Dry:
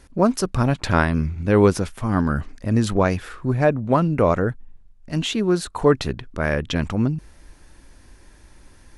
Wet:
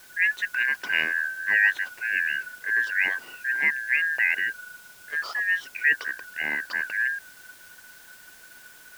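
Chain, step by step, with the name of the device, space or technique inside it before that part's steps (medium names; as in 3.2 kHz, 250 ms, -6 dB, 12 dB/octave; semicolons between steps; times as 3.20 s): split-band scrambled radio (four frequency bands reordered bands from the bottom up 2143; band-pass 380–3400 Hz; white noise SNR 24 dB); trim -5.5 dB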